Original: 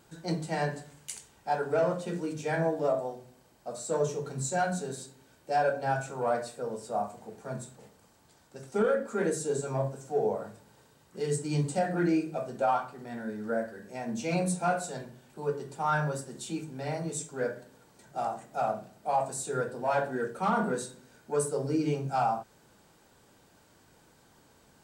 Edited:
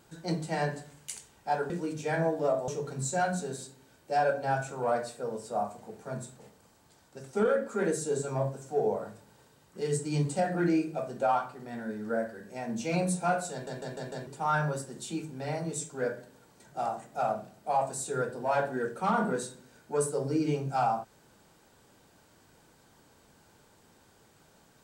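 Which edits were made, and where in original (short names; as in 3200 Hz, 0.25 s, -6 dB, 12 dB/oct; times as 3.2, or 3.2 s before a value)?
1.7–2.1 cut
3.08–4.07 cut
14.91 stutter in place 0.15 s, 5 plays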